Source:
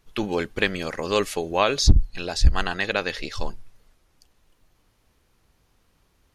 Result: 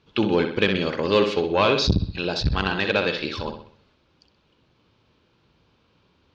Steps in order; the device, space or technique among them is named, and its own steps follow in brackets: analogue delay pedal into a guitar amplifier (analogue delay 63 ms, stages 2048, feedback 43%, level -8 dB; tube stage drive 14 dB, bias 0.25; speaker cabinet 100–4300 Hz, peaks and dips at 720 Hz -7 dB, 1200 Hz -3 dB, 1900 Hz -9 dB); gain +6.5 dB

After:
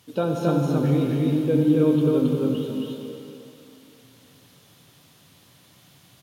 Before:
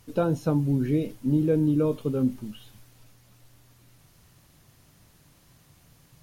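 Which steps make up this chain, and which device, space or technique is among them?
stadium PA (HPF 130 Hz 12 dB/oct; bell 3400 Hz +8 dB 0.58 oct; loudspeakers at several distances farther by 76 m -11 dB, 93 m -1 dB; reverb RT60 3.3 s, pre-delay 54 ms, DRR 3 dB)

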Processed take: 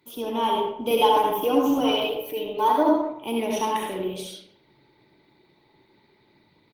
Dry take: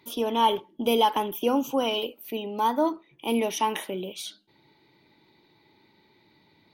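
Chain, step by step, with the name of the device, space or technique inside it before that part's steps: 0.9–2.83 comb 6.7 ms, depth 99%; speakerphone in a meeting room (reverb RT60 0.75 s, pre-delay 61 ms, DRR -1 dB; speakerphone echo 0.15 s, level -22 dB; AGC gain up to 3 dB; gain -4.5 dB; Opus 24 kbps 48000 Hz)

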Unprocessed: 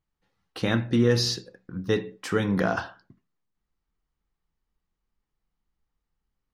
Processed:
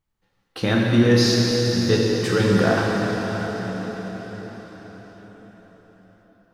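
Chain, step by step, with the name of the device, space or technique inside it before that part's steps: cathedral (reverb RT60 5.8 s, pre-delay 8 ms, DRR -3 dB); gain +2.5 dB

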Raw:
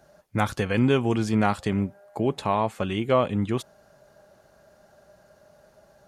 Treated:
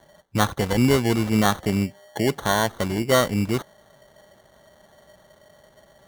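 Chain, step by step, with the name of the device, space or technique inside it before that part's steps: crushed at another speed (playback speed 0.5×; sample-and-hold 35×; playback speed 2×); gain +2.5 dB

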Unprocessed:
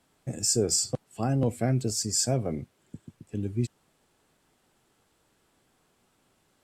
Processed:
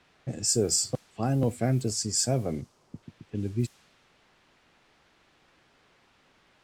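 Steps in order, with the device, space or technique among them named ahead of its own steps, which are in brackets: cassette deck with a dynamic noise filter (white noise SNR 25 dB; low-pass opened by the level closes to 2700 Hz, open at -22 dBFS); 2.61–3.03 band shelf 2500 Hz -9 dB

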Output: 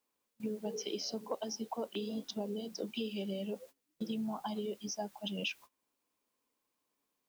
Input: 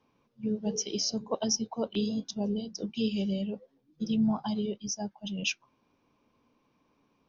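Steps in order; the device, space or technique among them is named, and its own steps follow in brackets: baby monitor (BPF 310–3300 Hz; compressor 10:1, threshold -40 dBFS, peak gain reduction 14.5 dB; white noise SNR 24 dB; gate -59 dBFS, range -21 dB); gain +5.5 dB

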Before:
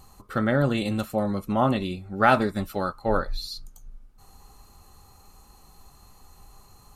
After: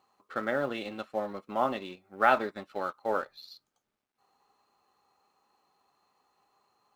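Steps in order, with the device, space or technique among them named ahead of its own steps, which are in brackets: phone line with mismatched companding (BPF 380–3400 Hz; G.711 law mismatch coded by A); gain -3.5 dB

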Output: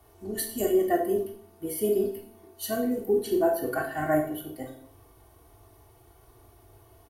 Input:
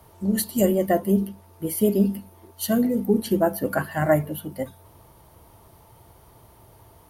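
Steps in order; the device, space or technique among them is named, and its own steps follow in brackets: microphone above a desk (comb 2.7 ms, depth 80%; reverb RT60 0.55 s, pre-delay 18 ms, DRR 2 dB); gain -8.5 dB

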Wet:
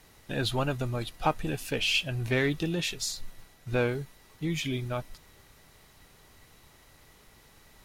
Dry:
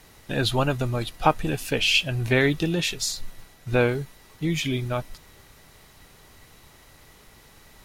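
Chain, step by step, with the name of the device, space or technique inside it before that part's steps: parallel distortion (in parallel at -7 dB: hard clip -19.5 dBFS, distortion -10 dB); on the sum: gain -8.5 dB

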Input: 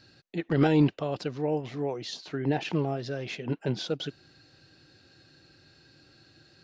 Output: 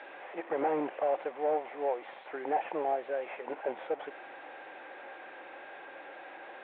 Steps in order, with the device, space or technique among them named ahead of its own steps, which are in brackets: digital answering machine (BPF 310–3400 Hz; delta modulation 16 kbps, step -40 dBFS; speaker cabinet 490–3600 Hz, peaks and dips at 550 Hz +7 dB, 790 Hz +9 dB, 1300 Hz -3 dB, 2900 Hz -8 dB)

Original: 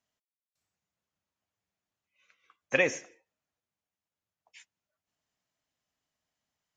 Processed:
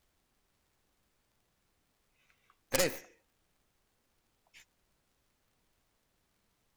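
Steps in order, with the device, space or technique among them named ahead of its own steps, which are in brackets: record under a worn stylus (tracing distortion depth 0.46 ms; crackle; pink noise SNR 32 dB); gain -4 dB

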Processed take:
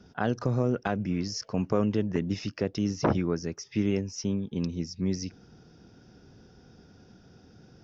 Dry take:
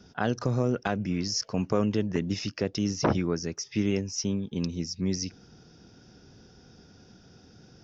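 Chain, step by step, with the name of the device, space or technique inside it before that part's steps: behind a face mask (high shelf 3300 Hz -8 dB)

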